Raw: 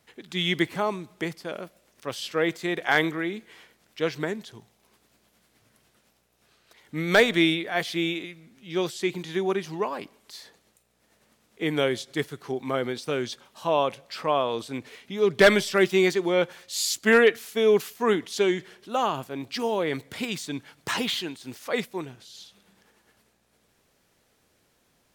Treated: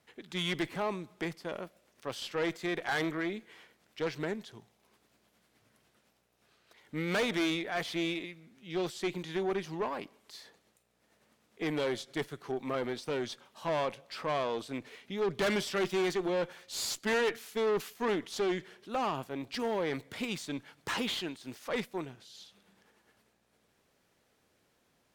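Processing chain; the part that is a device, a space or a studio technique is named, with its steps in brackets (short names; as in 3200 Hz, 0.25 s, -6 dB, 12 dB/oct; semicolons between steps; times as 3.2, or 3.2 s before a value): tube preamp driven hard (tube stage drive 24 dB, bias 0.45; low shelf 86 Hz -5.5 dB; high shelf 4600 Hz -5 dB); gain -2 dB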